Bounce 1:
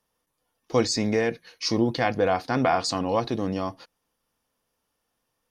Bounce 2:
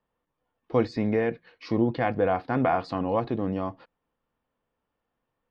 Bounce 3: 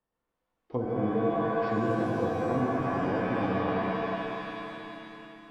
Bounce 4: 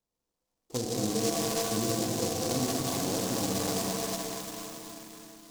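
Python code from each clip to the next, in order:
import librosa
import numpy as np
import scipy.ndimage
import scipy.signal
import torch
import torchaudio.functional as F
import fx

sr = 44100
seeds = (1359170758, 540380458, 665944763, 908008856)

y1 = fx.air_absorb(x, sr, metres=450.0)
y2 = fx.reverse_delay_fb(y1, sr, ms=122, feedback_pct=73, wet_db=-5)
y2 = fx.env_lowpass_down(y2, sr, base_hz=330.0, full_db=-18.5)
y2 = fx.rev_shimmer(y2, sr, seeds[0], rt60_s=2.5, semitones=7, shimmer_db=-2, drr_db=0.5)
y2 = y2 * librosa.db_to_amplitude(-7.0)
y3 = fx.noise_mod_delay(y2, sr, seeds[1], noise_hz=5700.0, depth_ms=0.17)
y3 = y3 * librosa.db_to_amplitude(-2.0)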